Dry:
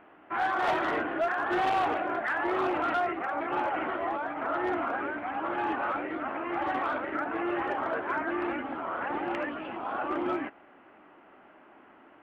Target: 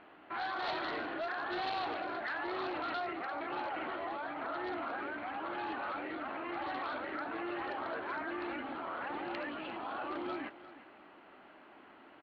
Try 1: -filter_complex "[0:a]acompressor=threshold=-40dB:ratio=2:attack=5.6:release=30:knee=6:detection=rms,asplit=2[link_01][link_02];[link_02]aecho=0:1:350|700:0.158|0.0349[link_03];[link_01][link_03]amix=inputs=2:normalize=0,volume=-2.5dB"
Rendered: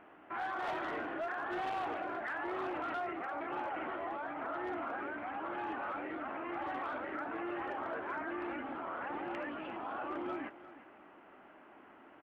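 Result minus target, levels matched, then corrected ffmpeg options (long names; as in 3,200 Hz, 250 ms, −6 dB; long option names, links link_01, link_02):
4,000 Hz band −7.5 dB
-filter_complex "[0:a]acompressor=threshold=-40dB:ratio=2:attack=5.6:release=30:knee=6:detection=rms,lowpass=frequency=4200:width_type=q:width=8.5,asplit=2[link_01][link_02];[link_02]aecho=0:1:350|700:0.158|0.0349[link_03];[link_01][link_03]amix=inputs=2:normalize=0,volume=-2.5dB"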